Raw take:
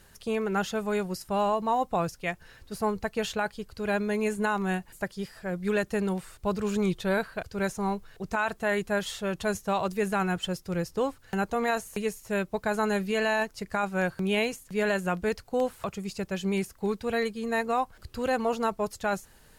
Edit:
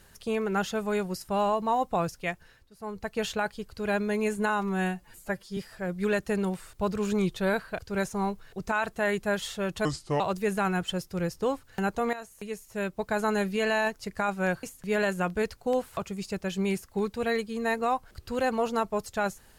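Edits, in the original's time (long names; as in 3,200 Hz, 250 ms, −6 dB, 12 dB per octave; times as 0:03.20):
0:02.27–0:03.22: duck −20 dB, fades 0.47 s
0:04.49–0:05.21: time-stretch 1.5×
0:09.49–0:09.75: play speed 74%
0:11.68–0:12.72: fade in, from −14.5 dB
0:14.18–0:14.50: remove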